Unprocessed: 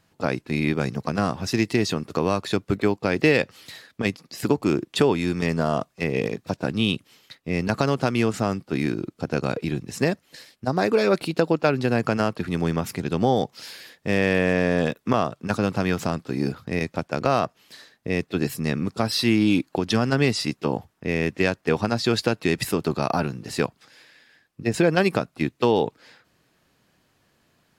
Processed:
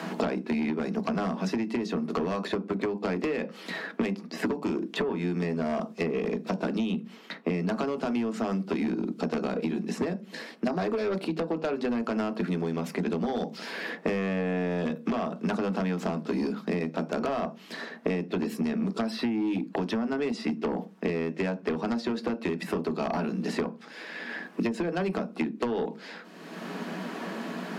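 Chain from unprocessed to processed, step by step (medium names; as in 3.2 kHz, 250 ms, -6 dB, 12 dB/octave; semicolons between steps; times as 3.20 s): low-pass 2.4 kHz 6 dB/octave; on a send at -8.5 dB: reverberation RT60 0.20 s, pre-delay 3 ms; on the sum: compression 10:1, threshold -23 dBFS, peak gain reduction 13.5 dB; elliptic high-pass 190 Hz, stop band 40 dB; in parallel at -7 dB: sine folder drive 11 dB, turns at -11.5 dBFS; on the sum: three bands compressed up and down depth 100%; trim -9 dB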